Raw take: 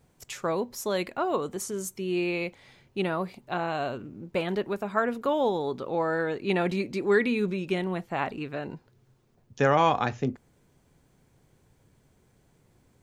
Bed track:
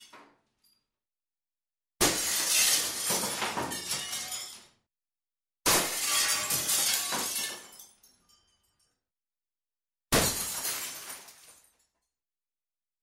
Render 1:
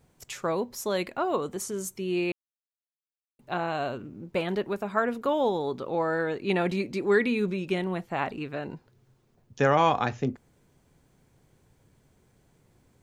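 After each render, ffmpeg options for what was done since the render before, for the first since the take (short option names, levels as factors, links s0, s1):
-filter_complex "[0:a]asplit=3[s0][s1][s2];[s0]atrim=end=2.32,asetpts=PTS-STARTPTS,afade=t=out:st=2.316:d=0.004:c=hsin[s3];[s1]atrim=start=2.32:end=3.39,asetpts=PTS-STARTPTS,volume=0[s4];[s2]atrim=start=3.39,asetpts=PTS-STARTPTS,afade=t=in:d=0.004:c=hsin[s5];[s3][s4][s5]concat=n=3:v=0:a=1"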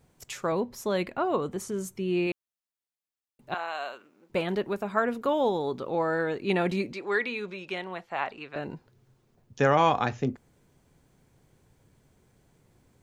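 -filter_complex "[0:a]asettb=1/sr,asplit=3[s0][s1][s2];[s0]atrim=end=0.524[s3];[s1]atrim=start=0.52:end=2.27,asetpts=PTS-STARTPTS,afade=t=in:d=0.004:c=qsin,afade=t=out:st=1.746:d=0.004:c=qsin,bass=f=250:g=4,treble=f=4000:g=-6[s4];[s2]atrim=start=2.266[s5];[s3][s4]acrossfade=d=0.004:c1=hsin:c2=qsin[s6];[s6][s5]acrossfade=d=0.004:c1=qsin:c2=hsin,asettb=1/sr,asplit=3[s7][s8][s9];[s7]atrim=end=3.544[s10];[s8]atrim=start=3.54:end=4.3,asetpts=PTS-STARTPTS,afade=t=in:d=0.004:c=qsin,afade=t=out:st=0.756:d=0.004:c=qsin,highpass=830[s11];[s9]atrim=start=4.296[s12];[s10][s11]acrossfade=d=0.004:c1=hsin:c2=qsin[s13];[s13][s12]acrossfade=d=0.004:c1=qsin:c2=hsin,asettb=1/sr,asplit=3[s14][s15][s16];[s14]atrim=end=6.934[s17];[s15]atrim=start=6.93:end=8.56,asetpts=PTS-STARTPTS,afade=t=in:d=0.004:c=qsin,afade=t=out:st=1.626:d=0.004:c=qsin,acrossover=split=510 6400:gain=0.2 1 0.224[s18][s19][s20];[s18][s19][s20]amix=inputs=3:normalize=0[s21];[s16]atrim=start=8.556[s22];[s17][s21]acrossfade=d=0.004:c1=hsin:c2=qsin[s23];[s23][s22]acrossfade=d=0.004:c1=qsin:c2=hsin"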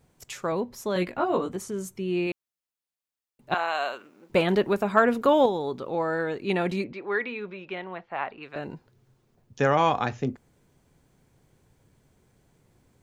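-filter_complex "[0:a]asettb=1/sr,asplit=3[s0][s1][s2];[s0]atrim=end=0.944[s3];[s1]atrim=start=0.94:end=1.56,asetpts=PTS-STARTPTS,afade=t=in:d=0.004:c=qsin,afade=t=out:st=0.616:d=0.004:c=qsin,asplit=2[s4][s5];[s5]adelay=17,volume=0.794[s6];[s4][s6]amix=inputs=2:normalize=0,atrim=end_sample=27342[s7];[s2]atrim=start=1.556[s8];[s3][s7]acrossfade=d=0.004:c1=hsin:c2=qsin[s9];[s9][s8]acrossfade=d=0.004:c1=qsin:c2=hsin,asettb=1/sr,asplit=3[s10][s11][s12];[s10]atrim=end=3.514[s13];[s11]atrim=start=3.51:end=5.46,asetpts=PTS-STARTPTS,afade=t=in:d=0.004:c=qsin,afade=t=out:st=1.946:d=0.004:c=qsin,acontrast=62[s14];[s12]atrim=start=5.456[s15];[s13][s14]acrossfade=d=0.004:c1=hsin:c2=qsin[s16];[s16][s15]acrossfade=d=0.004:c1=qsin:c2=hsin,asettb=1/sr,asplit=3[s17][s18][s19];[s17]atrim=end=6.844[s20];[s18]atrim=start=6.84:end=8.43,asetpts=PTS-STARTPTS,afade=t=in:d=0.004:c=qsin,afade=t=out:st=1.586:d=0.004:c=qsin,lowpass=2700[s21];[s19]atrim=start=8.426[s22];[s20][s21]acrossfade=d=0.004:c1=hsin:c2=qsin[s23];[s23][s22]acrossfade=d=0.004:c1=qsin:c2=hsin"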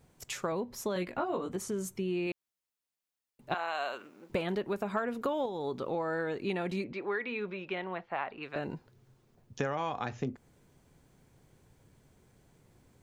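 -af "acompressor=threshold=0.0316:ratio=6"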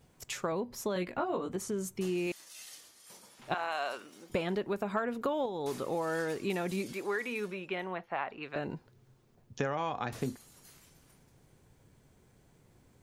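-filter_complex "[1:a]volume=0.0562[s0];[0:a][s0]amix=inputs=2:normalize=0"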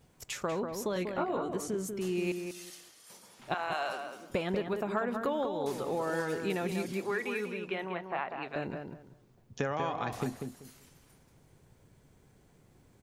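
-filter_complex "[0:a]asplit=2[s0][s1];[s1]adelay=192,lowpass=f=2100:p=1,volume=0.531,asplit=2[s2][s3];[s3]adelay=192,lowpass=f=2100:p=1,volume=0.23,asplit=2[s4][s5];[s5]adelay=192,lowpass=f=2100:p=1,volume=0.23[s6];[s0][s2][s4][s6]amix=inputs=4:normalize=0"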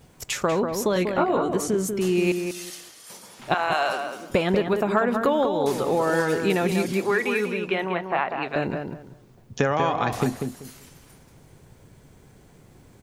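-af "volume=3.35"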